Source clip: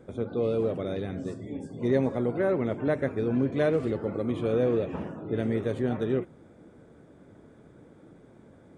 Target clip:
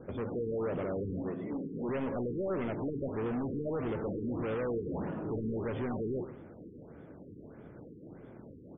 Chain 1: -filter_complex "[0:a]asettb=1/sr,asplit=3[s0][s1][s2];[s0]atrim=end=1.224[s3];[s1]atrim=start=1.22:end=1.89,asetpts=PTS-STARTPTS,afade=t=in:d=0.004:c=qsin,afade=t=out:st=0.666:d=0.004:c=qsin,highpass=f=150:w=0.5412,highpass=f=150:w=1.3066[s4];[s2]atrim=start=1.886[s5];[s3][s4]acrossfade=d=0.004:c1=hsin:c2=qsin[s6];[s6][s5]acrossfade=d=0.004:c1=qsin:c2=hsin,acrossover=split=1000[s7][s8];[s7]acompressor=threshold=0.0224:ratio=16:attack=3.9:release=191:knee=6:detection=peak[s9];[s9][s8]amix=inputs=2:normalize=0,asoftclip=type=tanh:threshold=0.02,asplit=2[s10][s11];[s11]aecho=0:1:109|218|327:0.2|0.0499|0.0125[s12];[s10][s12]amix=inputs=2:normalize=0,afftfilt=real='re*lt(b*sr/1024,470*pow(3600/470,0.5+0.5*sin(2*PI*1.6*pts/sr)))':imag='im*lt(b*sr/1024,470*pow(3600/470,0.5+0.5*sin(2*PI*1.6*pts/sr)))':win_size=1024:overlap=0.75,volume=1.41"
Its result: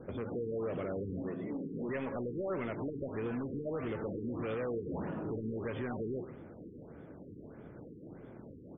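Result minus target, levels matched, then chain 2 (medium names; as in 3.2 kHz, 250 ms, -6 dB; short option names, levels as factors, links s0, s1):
compression: peak gain reduction +8.5 dB
-filter_complex "[0:a]asettb=1/sr,asplit=3[s0][s1][s2];[s0]atrim=end=1.224[s3];[s1]atrim=start=1.22:end=1.89,asetpts=PTS-STARTPTS,afade=t=in:d=0.004:c=qsin,afade=t=out:st=0.666:d=0.004:c=qsin,highpass=f=150:w=0.5412,highpass=f=150:w=1.3066[s4];[s2]atrim=start=1.886[s5];[s3][s4]acrossfade=d=0.004:c1=hsin:c2=qsin[s6];[s6][s5]acrossfade=d=0.004:c1=qsin:c2=hsin,acrossover=split=1000[s7][s8];[s7]acompressor=threshold=0.0631:ratio=16:attack=3.9:release=191:knee=6:detection=peak[s9];[s9][s8]amix=inputs=2:normalize=0,asoftclip=type=tanh:threshold=0.02,asplit=2[s10][s11];[s11]aecho=0:1:109|218|327:0.2|0.0499|0.0125[s12];[s10][s12]amix=inputs=2:normalize=0,afftfilt=real='re*lt(b*sr/1024,470*pow(3600/470,0.5+0.5*sin(2*PI*1.6*pts/sr)))':imag='im*lt(b*sr/1024,470*pow(3600/470,0.5+0.5*sin(2*PI*1.6*pts/sr)))':win_size=1024:overlap=0.75,volume=1.41"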